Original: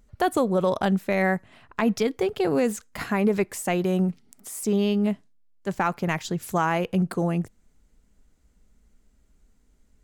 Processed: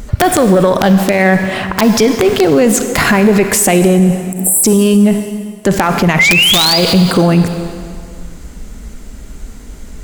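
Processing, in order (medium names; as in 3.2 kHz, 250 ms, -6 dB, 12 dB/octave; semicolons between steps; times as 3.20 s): single-diode clipper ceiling -14 dBFS; time-frequency box 3.97–4.64 s, 910–7400 Hz -27 dB; compression 10:1, threshold -33 dBFS, peak gain reduction 13.5 dB; painted sound rise, 6.19–6.78 s, 2–5 kHz -33 dBFS; integer overflow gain 23.5 dB; reverberation RT60 2.0 s, pre-delay 28 ms, DRR 10.5 dB; loudness maximiser +33 dB; trim -1 dB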